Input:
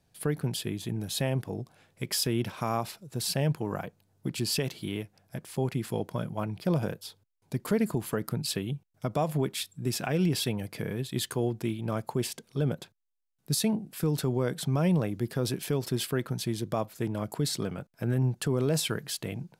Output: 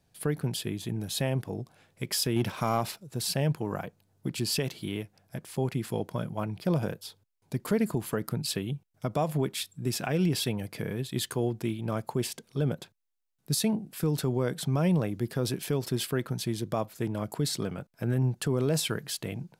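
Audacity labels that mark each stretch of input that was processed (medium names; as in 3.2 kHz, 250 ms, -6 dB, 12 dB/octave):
2.360000	3.020000	waveshaping leveller passes 1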